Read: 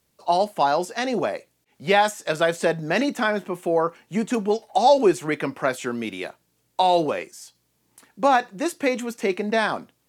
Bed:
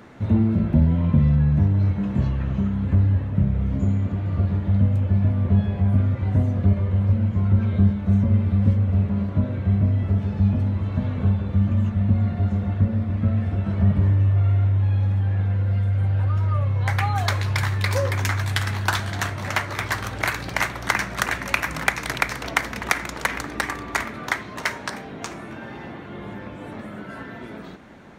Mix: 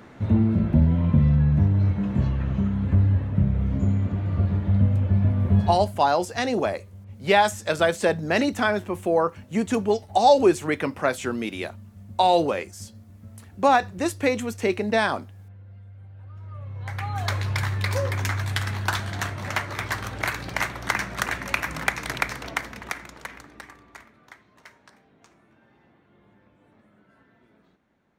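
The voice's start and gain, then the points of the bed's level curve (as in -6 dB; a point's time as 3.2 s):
5.40 s, 0.0 dB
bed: 5.72 s -1 dB
5.99 s -23.5 dB
16.14 s -23.5 dB
17.34 s -3 dB
22.27 s -3 dB
24.2 s -23.5 dB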